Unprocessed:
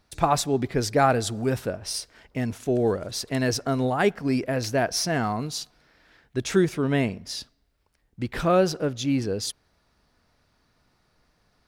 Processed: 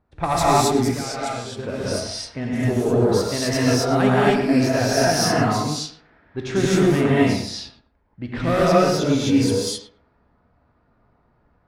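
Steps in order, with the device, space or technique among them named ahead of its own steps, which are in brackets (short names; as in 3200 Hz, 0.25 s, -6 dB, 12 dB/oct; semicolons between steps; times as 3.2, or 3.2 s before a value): rockabilly slapback (tube stage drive 11 dB, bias 0.45; tape echo 0.109 s, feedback 24%, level -6.5 dB, low-pass 2800 Hz); 0.75–1.59 pre-emphasis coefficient 0.8; non-linear reverb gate 0.29 s rising, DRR -7 dB; low-pass opened by the level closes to 1200 Hz, open at -18.5 dBFS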